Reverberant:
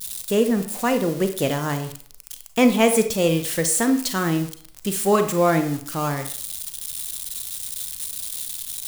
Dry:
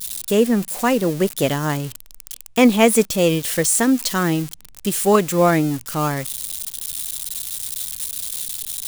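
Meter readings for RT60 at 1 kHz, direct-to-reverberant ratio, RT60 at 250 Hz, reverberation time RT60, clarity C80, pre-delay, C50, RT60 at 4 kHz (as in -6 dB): 0.55 s, 7.5 dB, 0.50 s, 0.50 s, 14.0 dB, 32 ms, 10.0 dB, 0.40 s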